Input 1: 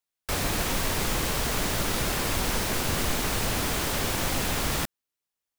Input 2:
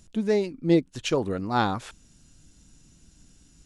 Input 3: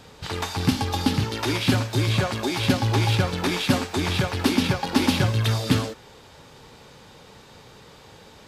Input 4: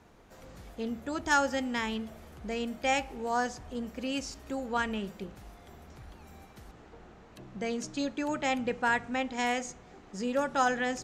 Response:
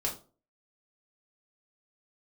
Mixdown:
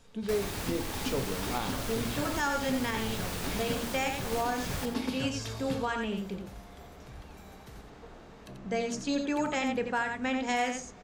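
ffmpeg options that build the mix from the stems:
-filter_complex "[0:a]volume=-10dB,asplit=2[link_01][link_02];[link_02]volume=-9dB[link_03];[1:a]volume=-12dB,asplit=2[link_04][link_05];[link_05]volume=-8dB[link_06];[2:a]volume=-18.5dB,asplit=2[link_07][link_08];[link_08]volume=-6dB[link_09];[3:a]adelay=1100,volume=-1.5dB,asplit=3[link_10][link_11][link_12];[link_11]volume=-8.5dB[link_13];[link_12]volume=-3.5dB[link_14];[4:a]atrim=start_sample=2205[link_15];[link_06][link_09][link_13]amix=inputs=3:normalize=0[link_16];[link_16][link_15]afir=irnorm=-1:irlink=0[link_17];[link_03][link_14]amix=inputs=2:normalize=0,aecho=0:1:88:1[link_18];[link_01][link_04][link_07][link_10][link_17][link_18]amix=inputs=6:normalize=0,alimiter=limit=-20dB:level=0:latency=1:release=270"

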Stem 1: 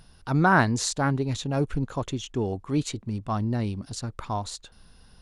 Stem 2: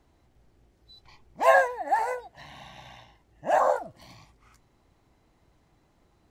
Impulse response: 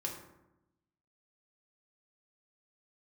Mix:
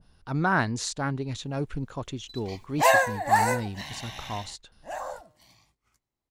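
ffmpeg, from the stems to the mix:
-filter_complex "[0:a]lowpass=frequency=1900:poles=1,volume=-5dB,asplit=2[link_01][link_02];[1:a]bandreject=frequency=152.1:width_type=h:width=4,bandreject=frequency=304.2:width_type=h:width=4,bandreject=frequency=456.3:width_type=h:width=4,bandreject=frequency=608.4:width_type=h:width=4,bandreject=frequency=760.5:width_type=h:width=4,bandreject=frequency=912.6:width_type=h:width=4,bandreject=frequency=1064.7:width_type=h:width=4,bandreject=frequency=1216.8:width_type=h:width=4,bandreject=frequency=1368.9:width_type=h:width=4,bandreject=frequency=1521:width_type=h:width=4,bandreject=frequency=1673.1:width_type=h:width=4,bandreject=frequency=1825.2:width_type=h:width=4,bandreject=frequency=1977.3:width_type=h:width=4,bandreject=frequency=2129.4:width_type=h:width=4,bandreject=frequency=2281.5:width_type=h:width=4,bandreject=frequency=2433.6:width_type=h:width=4,bandreject=frequency=2585.7:width_type=h:width=4,bandreject=frequency=2737.8:width_type=h:width=4,bandreject=frequency=2889.9:width_type=h:width=4,bandreject=frequency=3042:width_type=h:width=4,bandreject=frequency=3194.1:width_type=h:width=4,bandreject=frequency=3346.2:width_type=h:width=4,bandreject=frequency=3498.3:width_type=h:width=4,bandreject=frequency=3650.4:width_type=h:width=4,bandreject=frequency=3802.5:width_type=h:width=4,bandreject=frequency=3954.6:width_type=h:width=4,bandreject=frequency=4106.7:width_type=h:width=4,bandreject=frequency=4258.8:width_type=h:width=4,bandreject=frequency=4410.9:width_type=h:width=4,bandreject=frequency=4563:width_type=h:width=4,bandreject=frequency=4715.1:width_type=h:width=4,agate=range=-12dB:threshold=-57dB:ratio=16:detection=peak,alimiter=limit=-14dB:level=0:latency=1:release=369,adelay=1400,volume=3dB[link_03];[link_02]apad=whole_len=339848[link_04];[link_03][link_04]sidechaingate=range=-15dB:threshold=-47dB:ratio=16:detection=peak[link_05];[link_01][link_05]amix=inputs=2:normalize=0,highshelf=frequency=3700:gain=8.5,adynamicequalizer=threshold=0.00631:dfrequency=1500:dqfactor=0.7:tfrequency=1500:tqfactor=0.7:attack=5:release=100:ratio=0.375:range=2.5:mode=boostabove:tftype=highshelf"

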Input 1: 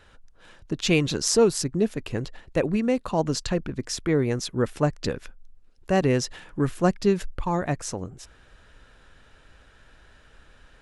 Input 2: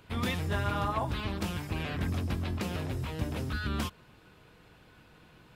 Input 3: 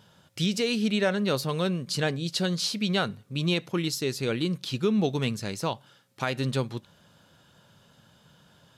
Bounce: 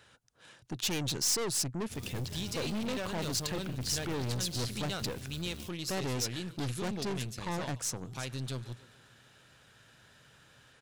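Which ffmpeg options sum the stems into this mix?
ffmpeg -i stem1.wav -i stem2.wav -i stem3.wav -filter_complex "[0:a]highpass=110,asoftclip=type=tanh:threshold=-20.5dB,volume=-4.5dB[link_01];[1:a]equalizer=frequency=1400:width=1.1:gain=-13.5,acrusher=bits=3:mode=log:mix=0:aa=0.000001,adelay=1800,volume=-12dB[link_02];[2:a]acontrast=36,adelay=1950,volume=-16dB,asplit=2[link_03][link_04];[link_04]volume=-20dB,aecho=0:1:144|288|432|576|720|864|1008|1152|1296:1|0.59|0.348|0.205|0.121|0.0715|0.0422|0.0249|0.0147[link_05];[link_01][link_02][link_03][link_05]amix=inputs=4:normalize=0,equalizer=frequency=120:width=4.6:gain=10.5,aeval=exprs='(tanh(39.8*val(0)+0.5)-tanh(0.5))/39.8':channel_layout=same,highshelf=frequency=2900:gain=9" out.wav

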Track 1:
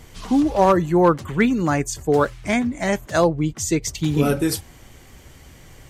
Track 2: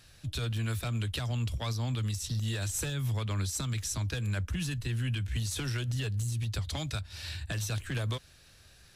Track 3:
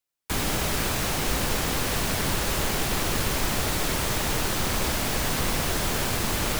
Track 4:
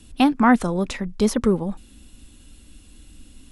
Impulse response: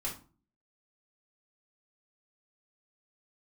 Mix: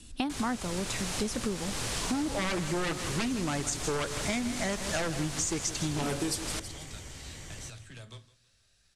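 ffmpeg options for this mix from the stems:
-filter_complex "[0:a]aeval=exprs='0.188*(abs(mod(val(0)/0.188+3,4)-2)-1)':channel_layout=same,adelay=1800,volume=-1dB,asplit=2[link_01][link_02];[link_02]volume=-13.5dB[link_03];[1:a]volume=-16.5dB,asplit=3[link_04][link_05][link_06];[link_05]volume=-6.5dB[link_07];[link_06]volume=-17dB[link_08];[2:a]volume=-7dB[link_09];[3:a]volume=-4dB[link_10];[4:a]atrim=start_sample=2205[link_11];[link_07][link_11]afir=irnorm=-1:irlink=0[link_12];[link_03][link_08]amix=inputs=2:normalize=0,aecho=0:1:161|322|483|644|805:1|0.34|0.116|0.0393|0.0134[link_13];[link_01][link_04][link_09][link_10][link_12][link_13]amix=inputs=6:normalize=0,lowpass=frequency=9400:width=0.5412,lowpass=frequency=9400:width=1.3066,highshelf=frequency=4200:gain=9.5,acompressor=threshold=-29dB:ratio=6"

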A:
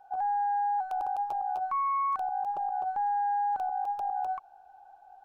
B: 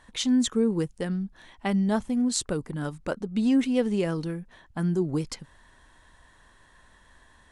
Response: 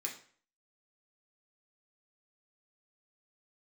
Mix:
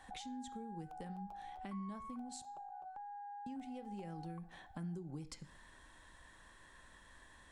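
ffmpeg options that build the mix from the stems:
-filter_complex "[0:a]acompressor=threshold=-32dB:ratio=6,volume=-8.5dB,asplit=2[link_01][link_02];[link_02]volume=-11.5dB[link_03];[1:a]acompressor=threshold=-36dB:ratio=3,volume=-5dB,asplit=3[link_04][link_05][link_06];[link_04]atrim=end=2.42,asetpts=PTS-STARTPTS,afade=type=out:start_time=2.416:duration=0.004:curve=hsin[link_07];[link_05]atrim=start=2.42:end=3.46,asetpts=PTS-STARTPTS,volume=0[link_08];[link_06]atrim=start=3.46,asetpts=PTS-STARTPTS,afade=type=in:duration=0.004:curve=hsin[link_09];[link_07][link_08][link_09]concat=n=3:v=0:a=1,asplit=2[link_10][link_11];[link_11]volume=-7dB[link_12];[2:a]atrim=start_sample=2205[link_13];[link_03][link_12]amix=inputs=2:normalize=0[link_14];[link_14][link_13]afir=irnorm=-1:irlink=0[link_15];[link_01][link_10][link_15]amix=inputs=3:normalize=0,acrossover=split=160[link_16][link_17];[link_17]acompressor=threshold=-48dB:ratio=5[link_18];[link_16][link_18]amix=inputs=2:normalize=0"

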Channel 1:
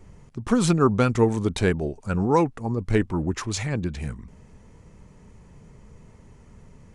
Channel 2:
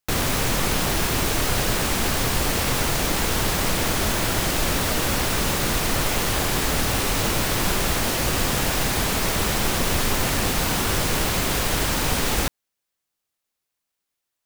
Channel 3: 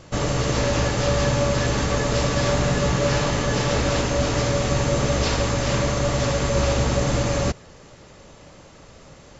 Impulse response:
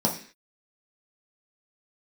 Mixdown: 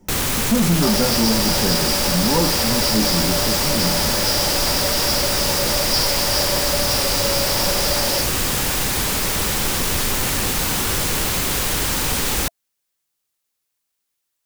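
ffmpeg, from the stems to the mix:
-filter_complex "[0:a]volume=-11dB,asplit=2[link_01][link_02];[link_02]volume=-4.5dB[link_03];[1:a]bandreject=frequency=670:width=12,volume=0.5dB[link_04];[2:a]highpass=frequency=470:width=0.5412,highpass=frequency=470:width=1.3066,acompressor=threshold=-30dB:ratio=6,lowpass=frequency=4800:width_type=q:width=9.4,adelay=700,volume=-4dB,asplit=2[link_05][link_06];[link_06]volume=-4dB[link_07];[3:a]atrim=start_sample=2205[link_08];[link_03][link_07]amix=inputs=2:normalize=0[link_09];[link_09][link_08]afir=irnorm=-1:irlink=0[link_10];[link_01][link_04][link_05][link_10]amix=inputs=4:normalize=0,highshelf=frequency=3800:gain=6,asoftclip=type=tanh:threshold=-11dB"

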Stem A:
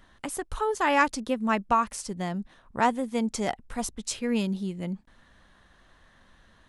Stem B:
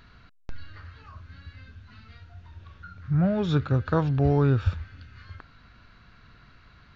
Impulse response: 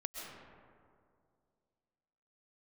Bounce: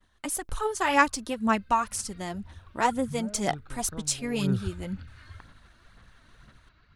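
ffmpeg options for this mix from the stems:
-filter_complex "[0:a]highshelf=frequency=4400:gain=9,volume=-3dB[link_01];[1:a]acompressor=threshold=-26dB:ratio=3,volume=6dB,afade=type=in:start_time=1.66:duration=0.31:silence=0.421697,afade=type=out:start_time=2.92:duration=0.53:silence=0.334965,afade=type=in:start_time=4.28:duration=0.34:silence=0.223872[link_02];[link_01][link_02]amix=inputs=2:normalize=0,agate=range=-33dB:threshold=-51dB:ratio=3:detection=peak,aphaser=in_gain=1:out_gain=1:delay=3.3:decay=0.46:speed=2:type=sinusoidal"

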